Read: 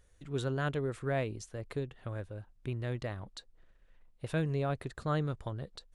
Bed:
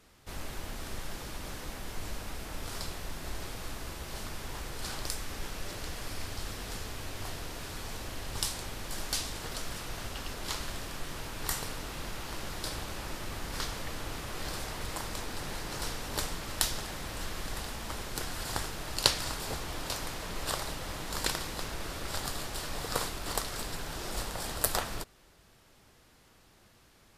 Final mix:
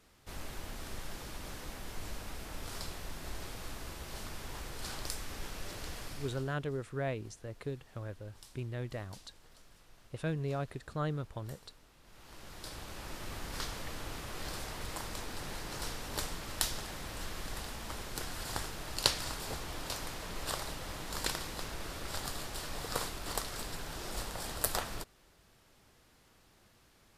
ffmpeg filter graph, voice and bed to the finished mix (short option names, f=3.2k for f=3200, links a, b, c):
-filter_complex "[0:a]adelay=5900,volume=-3dB[a];[1:a]volume=16dB,afade=t=out:st=5.97:d=0.59:silence=0.105925,afade=t=in:st=12.03:d=1.29:silence=0.105925[b];[a][b]amix=inputs=2:normalize=0"